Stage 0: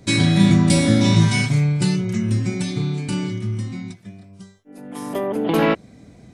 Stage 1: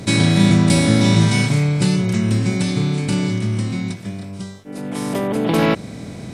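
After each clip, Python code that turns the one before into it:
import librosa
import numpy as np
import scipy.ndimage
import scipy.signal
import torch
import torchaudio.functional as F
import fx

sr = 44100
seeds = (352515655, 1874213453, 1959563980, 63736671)

y = fx.bin_compress(x, sr, power=0.6)
y = y * 10.0 ** (-1.0 / 20.0)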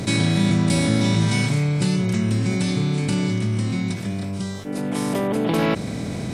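y = fx.env_flatten(x, sr, amount_pct=50)
y = y * 10.0 ** (-6.5 / 20.0)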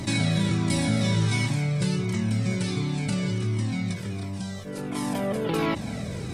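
y = x + 10.0 ** (-18.0 / 20.0) * np.pad(x, (int(271 * sr / 1000.0), 0))[:len(x)]
y = fx.comb_cascade(y, sr, direction='falling', hz=1.4)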